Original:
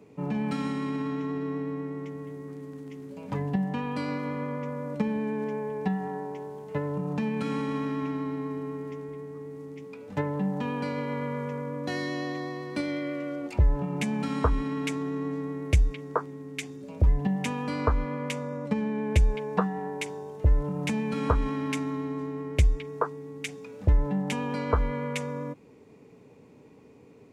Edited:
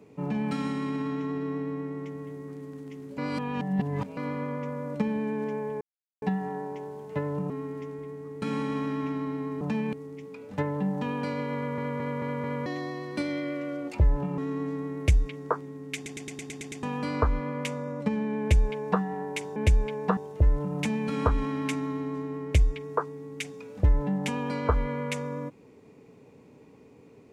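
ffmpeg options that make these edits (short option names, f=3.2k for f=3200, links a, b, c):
-filter_complex "[0:a]asplit=24[a][b][c][d][e][f][g][h][i][j][k][l][m][n][o][p][q][r][s][t][u][v][w][x];[a]atrim=end=3.182[y];[b]atrim=start=3.178:end=4.172,asetpts=PTS-STARTPTS,areverse[z];[c]atrim=start=4.168:end=5.81,asetpts=PTS-STARTPTS,afade=t=out:st=1.638:d=0.004:c=hsin,apad=pad_dur=0.41[aa];[d]atrim=start=5.81:end=7.092,asetpts=PTS-STARTPTS,afade=t=in:d=0.004:c=hsin[ab];[e]atrim=start=8.598:end=9.522[ac];[f]atrim=start=7.408:end=8.602[ad];[g]atrim=start=7.088:end=7.412[ae];[h]atrim=start=9.518:end=11.372[af];[i]atrim=start=11.148:end=11.372[ag];[j]atrim=start=11.148:end=11.372[ah];[k]atrim=start=11.148:end=11.372[ai];[l]atrim=start=11.148:end=11.372[aj];[m]atrim=start=12.248:end=13.972[ak];[n]atrim=start=15.028:end=16.712[al];[o]atrim=start=16.598:end=16.712[am];[p]atrim=start=16.598:end=16.712[an];[q]atrim=start=16.598:end=16.712[ao];[r]atrim=start=16.598:end=16.712[ap];[s]atrim=start=16.598:end=16.712[aq];[t]atrim=start=16.598:end=16.712[ar];[u]atrim=start=16.598:end=16.712[as];[v]atrim=start=17.478:end=20.212[at];[w]atrim=start=19.048:end=19.662[au];[x]atrim=start=20.208[av];[y][z]acrossfade=d=0.004:c1=hsin:c2=hsin[aw];[aa][ab]concat=n=2:v=0:a=1[ax];[aw][ax]acrossfade=d=0.004:c1=hsin:c2=hsin[ay];[ay][ac]acrossfade=d=0.004:c1=hsin:c2=hsin[az];[az][ad]acrossfade=d=0.004:c1=hsin:c2=hsin[ba];[ba][ae]acrossfade=d=0.004:c1=hsin:c2=hsin[bb];[bb][af]acrossfade=d=0.004:c1=hsin:c2=hsin[bc];[bc][ag]acrossfade=d=0.004:c1=hsin:c2=hsin[bd];[bd][ah]acrossfade=d=0.004:c1=hsin:c2=hsin[be];[be][ai]acrossfade=d=0.004:c1=hsin:c2=hsin[bf];[bf][aj]acrossfade=d=0.004:c1=hsin:c2=hsin[bg];[bg][ak]acrossfade=d=0.004:c1=hsin:c2=hsin[bh];[bh][al]acrossfade=d=0.004:c1=hsin:c2=hsin[bi];[bi][am]acrossfade=d=0.004:c1=hsin:c2=hsin[bj];[bj][an]acrossfade=d=0.004:c1=hsin:c2=hsin[bk];[bk][ao]acrossfade=d=0.004:c1=hsin:c2=hsin[bl];[bl][ap]acrossfade=d=0.004:c1=hsin:c2=hsin[bm];[bm][aq]acrossfade=d=0.004:c1=hsin:c2=hsin[bn];[bn][ar]acrossfade=d=0.004:c1=hsin:c2=hsin[bo];[bo][as]acrossfade=d=0.004:c1=hsin:c2=hsin[bp];[bp][at]acrossfade=d=0.004:c1=hsin:c2=hsin[bq];[bq][au]acrossfade=d=0.004:c1=hsin:c2=hsin[br];[br][av]acrossfade=d=0.004:c1=hsin:c2=hsin"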